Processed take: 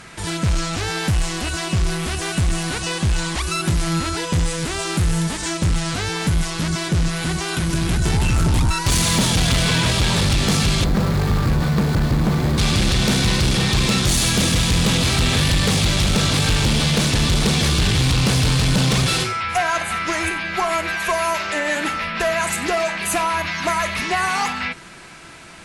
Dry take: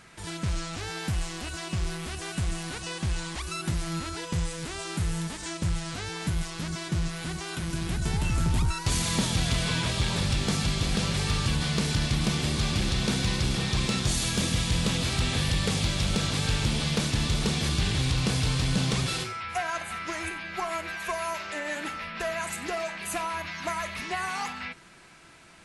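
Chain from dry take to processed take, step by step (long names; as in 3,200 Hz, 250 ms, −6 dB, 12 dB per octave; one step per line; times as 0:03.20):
0:10.84–0:12.58: running median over 15 samples
sine wavefolder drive 3 dB, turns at −18 dBFS
level +5 dB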